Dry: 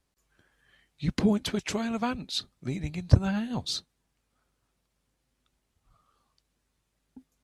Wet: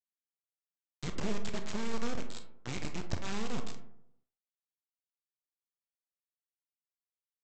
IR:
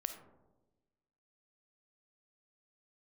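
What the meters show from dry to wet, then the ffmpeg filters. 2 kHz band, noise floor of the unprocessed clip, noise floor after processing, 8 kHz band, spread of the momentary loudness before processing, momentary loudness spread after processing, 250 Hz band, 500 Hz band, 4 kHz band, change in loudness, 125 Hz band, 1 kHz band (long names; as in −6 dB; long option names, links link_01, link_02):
−5.5 dB, −78 dBFS, below −85 dBFS, −6.0 dB, 10 LU, 9 LU, −11.0 dB, −7.0 dB, −11.0 dB, −10.5 dB, −15.0 dB, −6.5 dB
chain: -filter_complex "[0:a]acrossover=split=510|1400[link_01][link_02][link_03];[link_01]acompressor=threshold=-29dB:ratio=4[link_04];[link_02]acompressor=threshold=-43dB:ratio=4[link_05];[link_03]acompressor=threshold=-43dB:ratio=4[link_06];[link_04][link_05][link_06]amix=inputs=3:normalize=0,aresample=16000,acrusher=bits=3:dc=4:mix=0:aa=0.000001,aresample=44100[link_07];[1:a]atrim=start_sample=2205,asetrate=74970,aresample=44100[link_08];[link_07][link_08]afir=irnorm=-1:irlink=0,volume=4dB"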